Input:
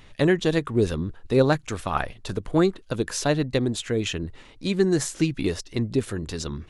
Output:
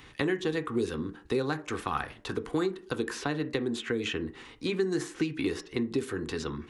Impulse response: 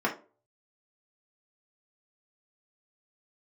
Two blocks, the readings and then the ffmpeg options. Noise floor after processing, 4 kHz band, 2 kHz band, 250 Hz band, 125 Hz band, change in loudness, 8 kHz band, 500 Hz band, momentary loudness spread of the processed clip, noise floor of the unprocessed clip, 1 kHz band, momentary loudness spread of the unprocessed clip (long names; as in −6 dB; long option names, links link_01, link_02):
−53 dBFS, −6.0 dB, −4.0 dB, −6.5 dB, −11.5 dB, −7.0 dB, −11.5 dB, −7.0 dB, 5 LU, −50 dBFS, −5.5 dB, 10 LU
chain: -filter_complex "[0:a]asplit=2[link_01][link_02];[1:a]atrim=start_sample=2205[link_03];[link_02][link_03]afir=irnorm=-1:irlink=0,volume=-14.5dB[link_04];[link_01][link_04]amix=inputs=2:normalize=0,acrossover=split=240|3200[link_05][link_06][link_07];[link_05]acompressor=threshold=-40dB:ratio=4[link_08];[link_06]acompressor=threshold=-27dB:ratio=4[link_09];[link_07]acompressor=threshold=-47dB:ratio=4[link_10];[link_08][link_09][link_10]amix=inputs=3:normalize=0,highpass=43,equalizer=frequency=620:width=3.4:gain=-11"